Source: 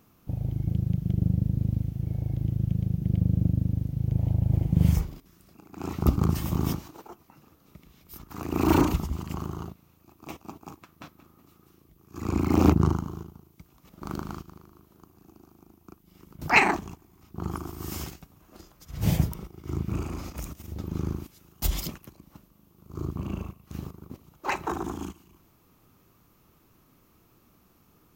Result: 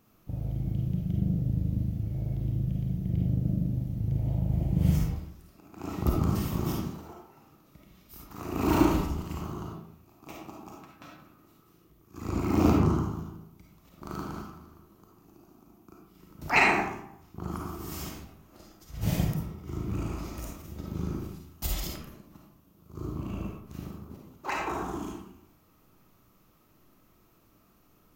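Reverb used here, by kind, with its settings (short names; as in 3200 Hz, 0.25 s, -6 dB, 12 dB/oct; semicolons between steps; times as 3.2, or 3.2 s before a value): digital reverb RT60 0.74 s, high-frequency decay 0.6×, pre-delay 10 ms, DRR -2 dB; gain -5 dB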